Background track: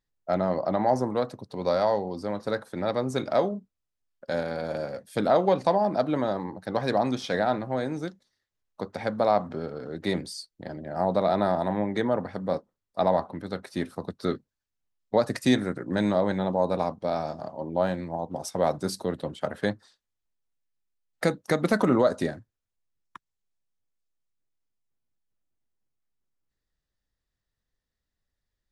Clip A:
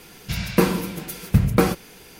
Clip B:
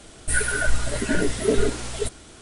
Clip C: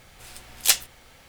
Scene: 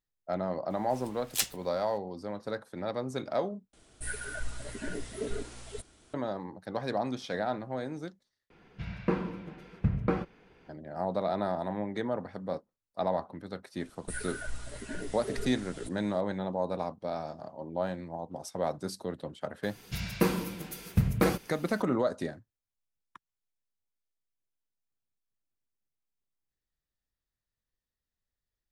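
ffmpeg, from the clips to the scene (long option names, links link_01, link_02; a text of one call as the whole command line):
ffmpeg -i bed.wav -i cue0.wav -i cue1.wav -i cue2.wav -filter_complex "[2:a]asplit=2[link_01][link_02];[1:a]asplit=2[link_03][link_04];[0:a]volume=-7dB[link_05];[link_03]lowpass=2000[link_06];[link_05]asplit=3[link_07][link_08][link_09];[link_07]atrim=end=3.734[link_10];[link_01]atrim=end=2.41,asetpts=PTS-STARTPTS,volume=-15dB[link_11];[link_08]atrim=start=6.136:end=8.504[link_12];[link_06]atrim=end=2.19,asetpts=PTS-STARTPTS,volume=-11dB[link_13];[link_09]atrim=start=10.686[link_14];[3:a]atrim=end=1.28,asetpts=PTS-STARTPTS,volume=-10.5dB,afade=type=in:duration=0.004:curve=hsin,afade=type=out:start_time=1.276:duration=0.004:curve=hsin,adelay=700[link_15];[link_02]atrim=end=2.41,asetpts=PTS-STARTPTS,volume=-16.5dB,afade=type=in:duration=0.004:curve=hsin,afade=type=out:start_time=2.406:duration=0.004:curve=hsin,adelay=608580S[link_16];[link_04]atrim=end=2.19,asetpts=PTS-STARTPTS,volume=-8.5dB,afade=type=in:duration=0.004:curve=hsin,afade=type=out:start_time=2.186:duration=0.004:curve=hsin,adelay=19630[link_17];[link_10][link_11]acrossfade=duration=0.004:curve1=hsin:curve2=hsin[link_18];[link_18][link_12]acrossfade=duration=0.004:curve1=hsin:curve2=hsin[link_19];[link_19][link_13]acrossfade=duration=0.004:curve1=hsin:curve2=hsin[link_20];[link_20][link_14]acrossfade=duration=0.004:curve1=hsin:curve2=hsin[link_21];[link_21][link_15][link_16][link_17]amix=inputs=4:normalize=0" out.wav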